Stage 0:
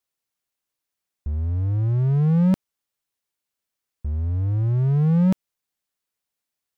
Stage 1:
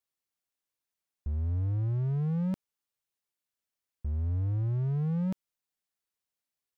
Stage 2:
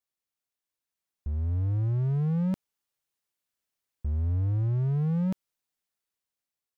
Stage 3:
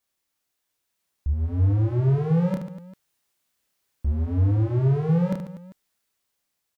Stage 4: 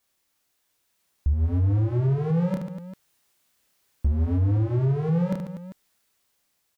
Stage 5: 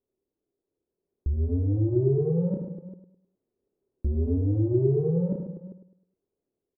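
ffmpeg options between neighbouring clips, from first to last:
ffmpeg -i in.wav -af "alimiter=limit=-18dB:level=0:latency=1:release=39,volume=-6dB" out.wav
ffmpeg -i in.wav -af "dynaudnorm=framelen=350:gausssize=7:maxgain=5dB,volume=-2dB" out.wav
ffmpeg -i in.wav -af "aeval=exprs='0.0944*sin(PI/2*1.78*val(0)/0.0944)':channel_layout=same,aecho=1:1:30|75|142.5|243.8|395.6:0.631|0.398|0.251|0.158|0.1" out.wav
ffmpeg -i in.wav -af "alimiter=limit=-22.5dB:level=0:latency=1:release=497,volume=6dB" out.wav
ffmpeg -i in.wav -af "lowpass=frequency=400:width_type=q:width=4.7,aecho=1:1:104|208|312|416:0.335|0.121|0.0434|0.0156,volume=-4.5dB" out.wav

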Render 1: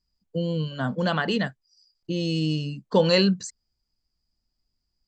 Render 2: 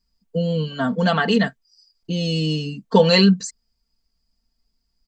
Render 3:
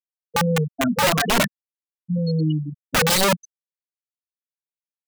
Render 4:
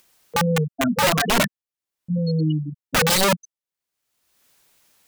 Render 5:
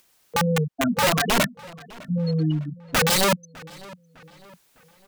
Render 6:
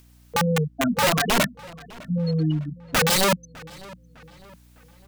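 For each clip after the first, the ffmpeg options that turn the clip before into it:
ffmpeg -i in.wav -af "aecho=1:1:4.4:0.74,volume=3.5dB" out.wav
ffmpeg -i in.wav -af "alimiter=limit=-7.5dB:level=0:latency=1:release=382,afftfilt=real='re*gte(hypot(re,im),0.316)':imag='im*gte(hypot(re,im),0.316)':win_size=1024:overlap=0.75,aeval=exprs='(mod(5.62*val(0)+1,2)-1)/5.62':channel_layout=same,volume=2dB" out.wav
ffmpeg -i in.wav -af "acompressor=mode=upward:threshold=-32dB:ratio=2.5" out.wav
ffmpeg -i in.wav -filter_complex "[0:a]asplit=2[link_01][link_02];[link_02]adelay=605,lowpass=frequency=4000:poles=1,volume=-21dB,asplit=2[link_03][link_04];[link_04]adelay=605,lowpass=frequency=4000:poles=1,volume=0.46,asplit=2[link_05][link_06];[link_06]adelay=605,lowpass=frequency=4000:poles=1,volume=0.46[link_07];[link_01][link_03][link_05][link_07]amix=inputs=4:normalize=0,volume=-1.5dB" out.wav
ffmpeg -i in.wav -af "aeval=exprs='val(0)+0.00251*(sin(2*PI*60*n/s)+sin(2*PI*2*60*n/s)/2+sin(2*PI*3*60*n/s)/3+sin(2*PI*4*60*n/s)/4+sin(2*PI*5*60*n/s)/5)':channel_layout=same" out.wav

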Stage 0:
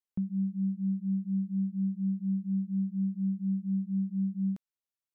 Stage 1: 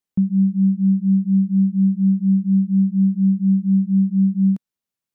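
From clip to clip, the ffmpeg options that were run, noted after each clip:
ffmpeg -i in.wav -af "equalizer=frequency=190:width_type=o:width=1.4:gain=8.5,volume=5.5dB" out.wav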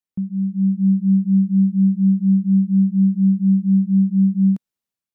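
ffmpeg -i in.wav -af "dynaudnorm=framelen=400:gausssize=3:maxgain=10dB,volume=-7dB" out.wav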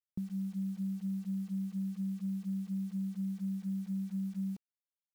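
ffmpeg -i in.wav -af "aecho=1:1:2.5:0.41,acompressor=threshold=-27dB:ratio=16,acrusher=bits=8:mix=0:aa=0.000001,volume=-6.5dB" out.wav

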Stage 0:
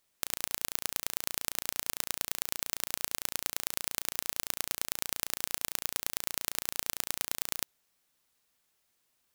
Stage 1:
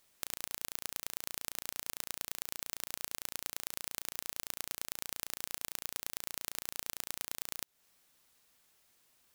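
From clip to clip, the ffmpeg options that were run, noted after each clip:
ffmpeg -i in.wav -af "acompressor=threshold=-38dB:ratio=6,volume=5.5dB" out.wav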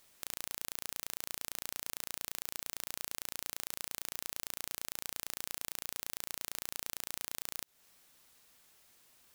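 ffmpeg -i in.wav -af "alimiter=limit=-16dB:level=0:latency=1:release=62,volume=5dB" out.wav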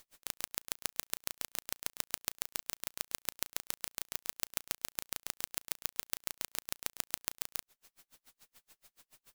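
ffmpeg -i in.wav -af "aeval=exprs='if(lt(val(0),0),0.708*val(0),val(0))':channel_layout=same,aeval=exprs='val(0)*pow(10,-38*(0.5-0.5*cos(2*PI*7*n/s))/20)':channel_layout=same,volume=8.5dB" out.wav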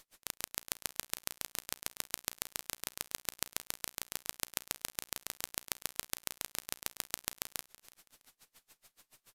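ffmpeg -i in.wav -af "aecho=1:1:327|654:0.112|0.0281,aresample=32000,aresample=44100,volume=1dB" out.wav

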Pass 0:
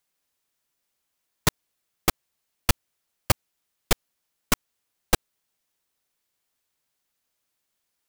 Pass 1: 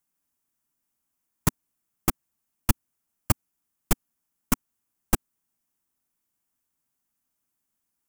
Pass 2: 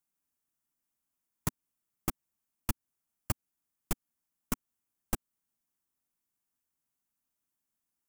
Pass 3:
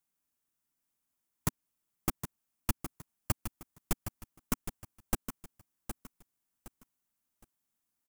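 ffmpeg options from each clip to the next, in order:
ffmpeg -i in.wav -af "equalizer=frequency=250:width_type=o:width=1:gain=6,equalizer=frequency=500:width_type=o:width=1:gain=-9,equalizer=frequency=2000:width_type=o:width=1:gain=-5,equalizer=frequency=4000:width_type=o:width=1:gain=-11" out.wav
ffmpeg -i in.wav -af "acompressor=threshold=-23dB:ratio=2.5,volume=-6dB" out.wav
ffmpeg -i in.wav -af "aecho=1:1:765|1530|2295:0.355|0.103|0.0298,volume=1dB" out.wav

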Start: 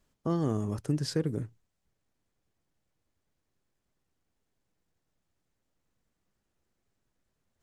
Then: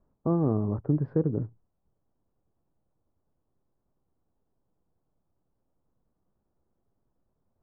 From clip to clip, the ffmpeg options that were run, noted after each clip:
ffmpeg -i in.wav -af "lowpass=frequency=1100:width=0.5412,lowpass=frequency=1100:width=1.3066,volume=4dB" out.wav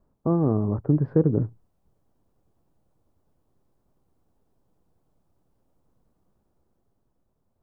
ffmpeg -i in.wav -af "dynaudnorm=framelen=220:gausssize=11:maxgain=5dB,volume=3dB" out.wav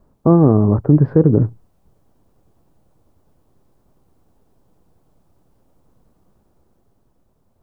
ffmpeg -i in.wav -af "alimiter=level_in=12dB:limit=-1dB:release=50:level=0:latency=1,volume=-1dB" out.wav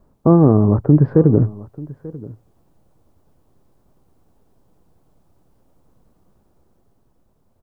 ffmpeg -i in.wav -af "aecho=1:1:888:0.1" out.wav

